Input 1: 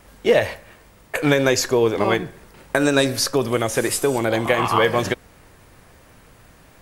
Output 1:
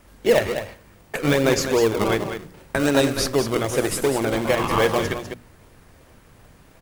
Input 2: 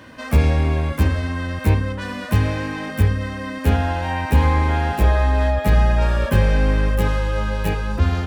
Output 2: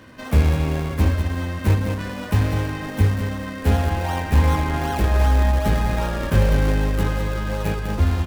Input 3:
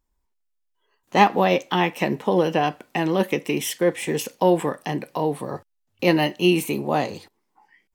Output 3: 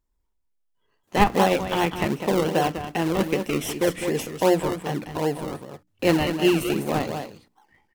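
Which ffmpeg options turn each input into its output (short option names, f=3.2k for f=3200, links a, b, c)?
-filter_complex "[0:a]aecho=1:1:200:0.398,asplit=2[a][b];[b]acrusher=samples=36:mix=1:aa=0.000001:lfo=1:lforange=36:lforate=2.6,volume=-4dB[c];[a][c]amix=inputs=2:normalize=0,bandreject=f=60:t=h:w=6,bandreject=f=120:t=h:w=6,bandreject=f=180:t=h:w=6,bandreject=f=240:t=h:w=6,bandreject=f=300:t=h:w=6,volume=-4.5dB"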